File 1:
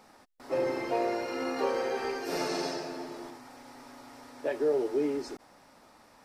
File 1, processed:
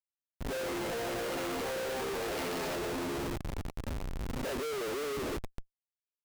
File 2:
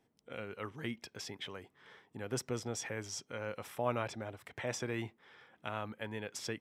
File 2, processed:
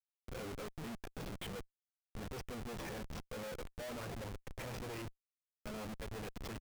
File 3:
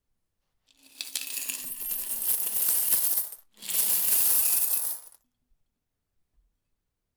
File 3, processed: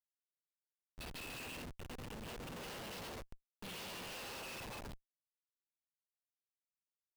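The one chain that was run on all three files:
loudspeaker in its box 120–4,900 Hz, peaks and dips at 180 Hz +8 dB, 480 Hz +6 dB, 2,700 Hz +6 dB
multi-voice chorus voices 2, 0.45 Hz, delay 11 ms, depth 3.5 ms
on a send: echo with shifted repeats 296 ms, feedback 54%, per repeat +87 Hz, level −23 dB
on the sum: comparator with hysteresis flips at −44.5 dBFS

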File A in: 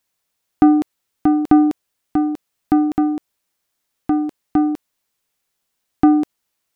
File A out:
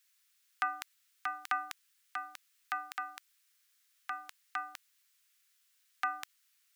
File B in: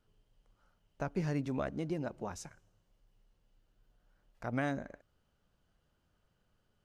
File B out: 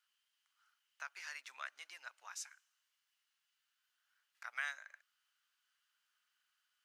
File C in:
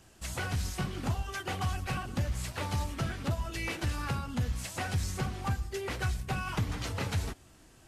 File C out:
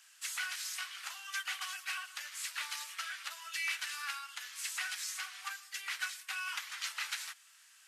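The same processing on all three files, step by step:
high-pass filter 1,400 Hz 24 dB per octave
level +2.5 dB

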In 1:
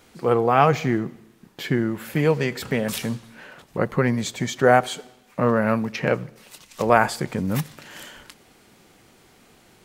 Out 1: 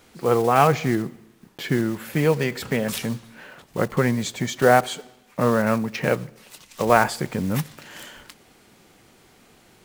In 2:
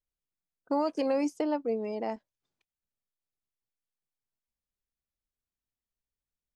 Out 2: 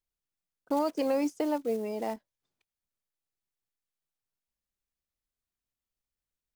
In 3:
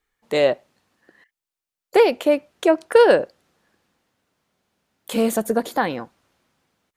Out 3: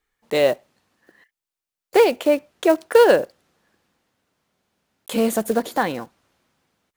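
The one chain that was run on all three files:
one scale factor per block 5 bits

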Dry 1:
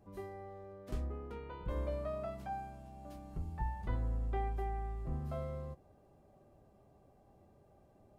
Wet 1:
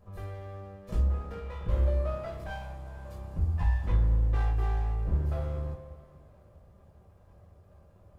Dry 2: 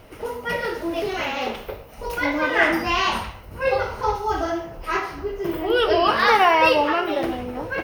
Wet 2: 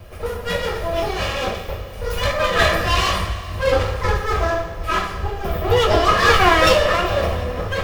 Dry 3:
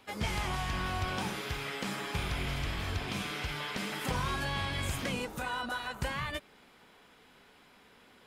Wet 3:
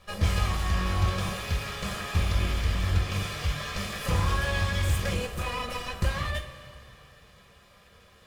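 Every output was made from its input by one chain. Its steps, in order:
lower of the sound and its delayed copy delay 1.7 ms
parametric band 77 Hz +9.5 dB 2.6 octaves
coupled-rooms reverb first 0.24 s, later 2.9 s, from −18 dB, DRR 0.5 dB
level +1 dB

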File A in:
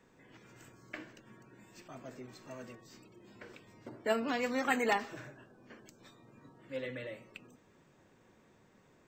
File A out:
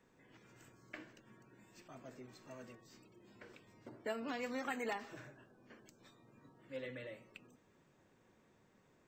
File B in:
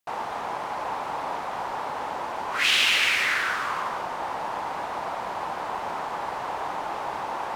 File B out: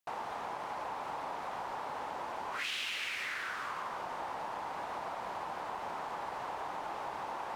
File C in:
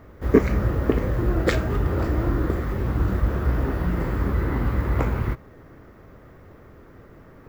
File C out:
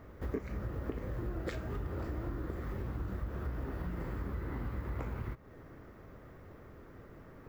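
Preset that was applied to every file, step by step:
downward compressor 4 to 1, threshold −31 dBFS
level −5.5 dB

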